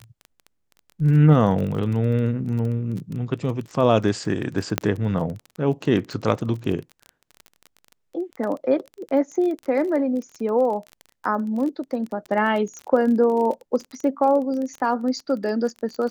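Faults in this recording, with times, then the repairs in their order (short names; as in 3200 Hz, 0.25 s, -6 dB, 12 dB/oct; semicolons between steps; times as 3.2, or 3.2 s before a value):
crackle 25/s -29 dBFS
4.78 pop -4 dBFS
12.79 pop -26 dBFS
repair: de-click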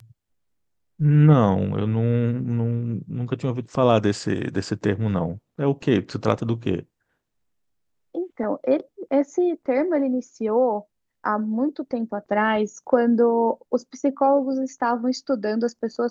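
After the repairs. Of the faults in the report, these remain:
4.78 pop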